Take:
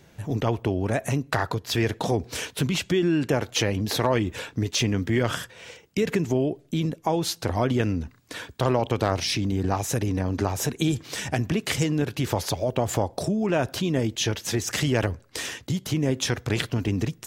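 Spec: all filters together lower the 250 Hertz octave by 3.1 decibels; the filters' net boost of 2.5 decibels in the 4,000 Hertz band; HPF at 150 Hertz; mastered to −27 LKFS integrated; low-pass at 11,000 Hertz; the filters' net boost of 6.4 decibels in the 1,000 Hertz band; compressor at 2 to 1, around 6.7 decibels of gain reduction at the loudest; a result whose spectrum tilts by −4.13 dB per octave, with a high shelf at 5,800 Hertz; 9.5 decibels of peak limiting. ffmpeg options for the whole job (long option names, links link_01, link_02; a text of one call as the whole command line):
ffmpeg -i in.wav -af "highpass=150,lowpass=11000,equalizer=frequency=250:width_type=o:gain=-4,equalizer=frequency=1000:width_type=o:gain=8.5,equalizer=frequency=4000:width_type=o:gain=5,highshelf=frequency=5800:gain=-6,acompressor=threshold=-27dB:ratio=2,volume=4.5dB,alimiter=limit=-14dB:level=0:latency=1" out.wav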